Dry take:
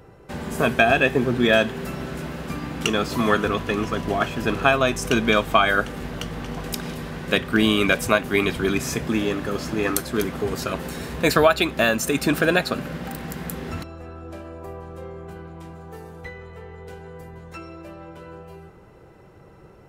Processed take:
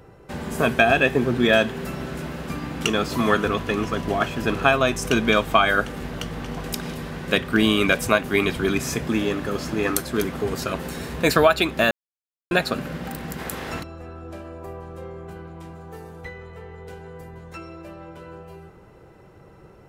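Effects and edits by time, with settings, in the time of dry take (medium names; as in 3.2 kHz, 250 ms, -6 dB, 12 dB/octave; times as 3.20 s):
11.91–12.51 s: mute
13.38–13.79 s: spectral peaks clipped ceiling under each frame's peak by 14 dB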